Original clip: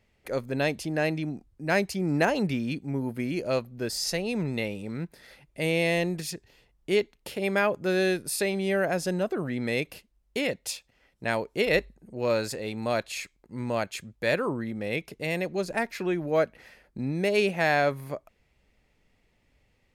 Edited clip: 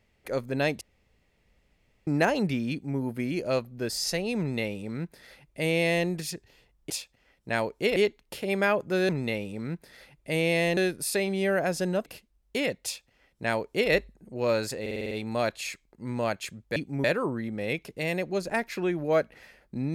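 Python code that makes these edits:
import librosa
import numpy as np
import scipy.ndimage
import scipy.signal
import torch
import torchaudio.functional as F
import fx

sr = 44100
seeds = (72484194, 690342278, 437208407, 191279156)

y = fx.edit(x, sr, fx.room_tone_fill(start_s=0.81, length_s=1.26),
    fx.duplicate(start_s=2.71, length_s=0.28, to_s=14.27),
    fx.duplicate(start_s=4.39, length_s=1.68, to_s=8.03),
    fx.cut(start_s=9.32, length_s=0.55),
    fx.duplicate(start_s=10.65, length_s=1.06, to_s=6.9),
    fx.stutter(start_s=12.62, slice_s=0.05, count=7), tone=tone)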